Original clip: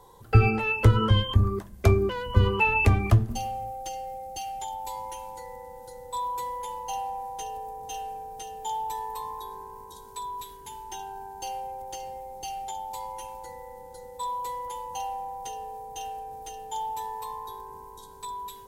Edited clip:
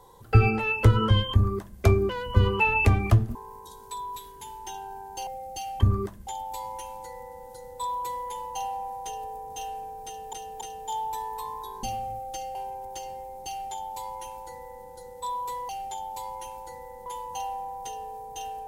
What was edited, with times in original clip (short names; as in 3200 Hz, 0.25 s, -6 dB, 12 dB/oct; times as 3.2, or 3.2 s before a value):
1.33–1.8 copy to 4.6
3.35–4.07 swap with 9.6–11.52
8.38–8.66 loop, 3 plays
12.46–13.83 copy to 14.66